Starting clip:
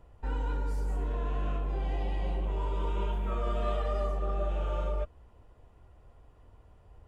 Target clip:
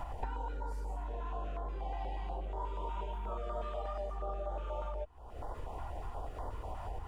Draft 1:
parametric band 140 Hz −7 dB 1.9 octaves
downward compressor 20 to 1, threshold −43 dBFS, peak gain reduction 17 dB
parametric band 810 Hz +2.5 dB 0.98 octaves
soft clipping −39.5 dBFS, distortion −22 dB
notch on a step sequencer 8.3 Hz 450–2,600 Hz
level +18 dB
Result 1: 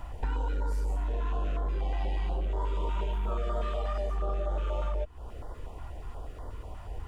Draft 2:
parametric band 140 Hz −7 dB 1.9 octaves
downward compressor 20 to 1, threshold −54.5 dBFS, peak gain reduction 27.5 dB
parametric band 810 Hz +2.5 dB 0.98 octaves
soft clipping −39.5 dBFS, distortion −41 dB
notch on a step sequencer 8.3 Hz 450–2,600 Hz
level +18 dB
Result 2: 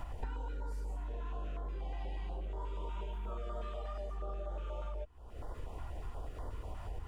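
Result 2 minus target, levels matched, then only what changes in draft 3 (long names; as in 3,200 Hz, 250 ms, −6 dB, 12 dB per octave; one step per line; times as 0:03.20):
1,000 Hz band −5.5 dB
change: second parametric band 810 Hz +12 dB 0.98 octaves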